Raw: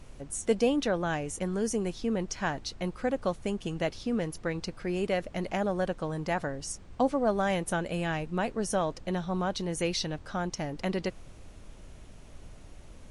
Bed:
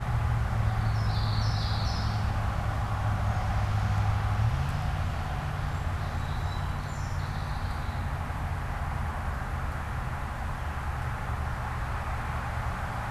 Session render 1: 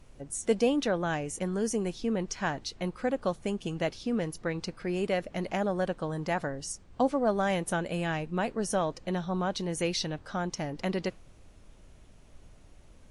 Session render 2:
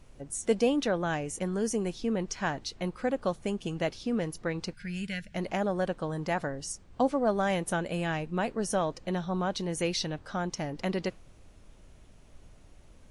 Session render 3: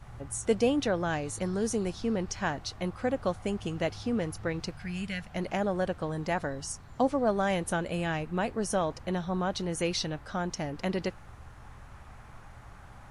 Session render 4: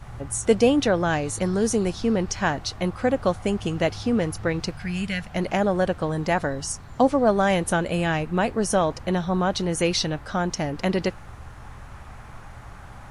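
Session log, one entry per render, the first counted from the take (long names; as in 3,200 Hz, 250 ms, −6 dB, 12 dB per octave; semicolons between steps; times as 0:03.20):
noise reduction from a noise print 6 dB
0:04.73–0:05.35: gain on a spectral selection 220–1,400 Hz −19 dB
mix in bed −18.5 dB
level +7.5 dB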